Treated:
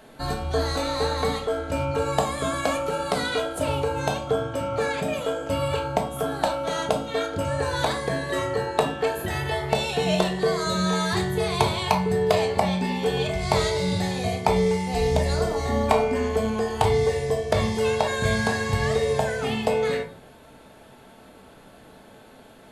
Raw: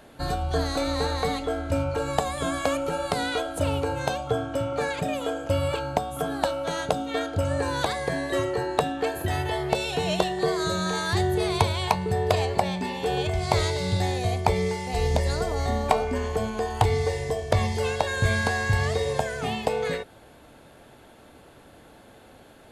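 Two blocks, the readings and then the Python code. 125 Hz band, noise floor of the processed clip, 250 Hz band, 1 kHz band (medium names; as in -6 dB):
-0.5 dB, -49 dBFS, +2.5 dB, +1.0 dB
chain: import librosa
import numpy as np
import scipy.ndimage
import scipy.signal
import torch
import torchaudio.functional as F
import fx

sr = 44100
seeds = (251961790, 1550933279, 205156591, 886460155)

y = fx.low_shelf(x, sr, hz=89.0, db=-6.0)
y = fx.room_shoebox(y, sr, seeds[0], volume_m3=400.0, walls='furnished', distance_m=1.5)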